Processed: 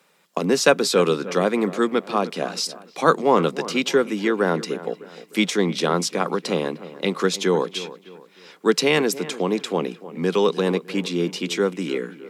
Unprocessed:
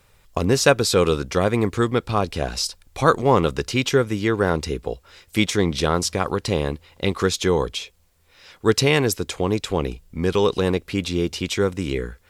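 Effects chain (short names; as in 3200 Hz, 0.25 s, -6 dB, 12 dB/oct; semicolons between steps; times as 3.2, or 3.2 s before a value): steep high-pass 160 Hz 72 dB/oct; high shelf 8400 Hz -4.5 dB; on a send: dark delay 0.304 s, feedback 38%, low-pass 2300 Hz, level -15.5 dB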